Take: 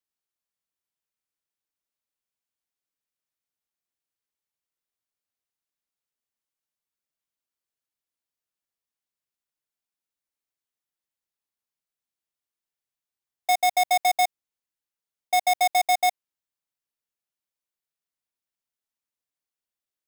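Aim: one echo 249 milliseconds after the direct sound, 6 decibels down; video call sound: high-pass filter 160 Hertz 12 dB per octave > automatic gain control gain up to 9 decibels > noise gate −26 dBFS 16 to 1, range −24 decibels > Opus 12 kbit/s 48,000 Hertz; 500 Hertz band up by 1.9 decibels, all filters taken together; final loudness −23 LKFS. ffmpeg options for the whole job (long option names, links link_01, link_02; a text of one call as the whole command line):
ffmpeg -i in.wav -af "highpass=160,equalizer=frequency=500:width_type=o:gain=4,aecho=1:1:249:0.501,dynaudnorm=maxgain=9dB,agate=range=-24dB:threshold=-26dB:ratio=16,volume=-4.5dB" -ar 48000 -c:a libopus -b:a 12k out.opus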